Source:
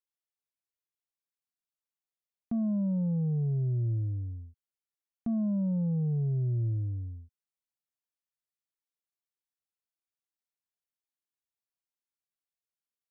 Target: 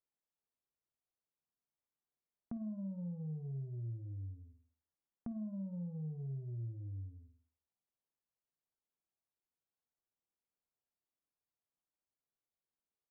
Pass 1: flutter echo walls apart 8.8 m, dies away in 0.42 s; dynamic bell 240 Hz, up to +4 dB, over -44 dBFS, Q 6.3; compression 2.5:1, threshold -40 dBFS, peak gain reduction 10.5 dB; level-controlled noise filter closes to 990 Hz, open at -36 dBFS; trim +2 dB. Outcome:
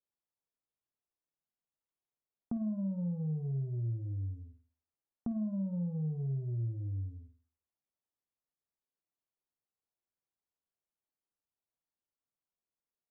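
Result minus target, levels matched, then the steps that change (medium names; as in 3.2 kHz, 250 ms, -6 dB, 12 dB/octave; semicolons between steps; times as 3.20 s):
compression: peak gain reduction -7 dB
change: compression 2.5:1, threshold -52 dBFS, peak gain reduction 18 dB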